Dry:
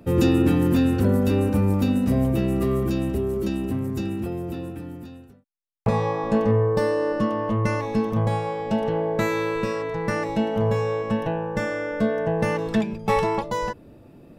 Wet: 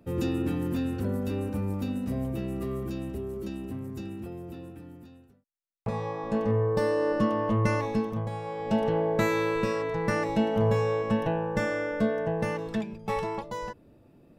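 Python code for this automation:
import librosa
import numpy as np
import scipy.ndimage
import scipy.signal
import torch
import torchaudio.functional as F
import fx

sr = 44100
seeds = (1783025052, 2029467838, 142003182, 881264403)

y = fx.gain(x, sr, db=fx.line((5.9, -10.0), (7.13, -2.0), (7.85, -2.0), (8.31, -11.5), (8.75, -2.0), (11.8, -2.0), (12.86, -9.0)))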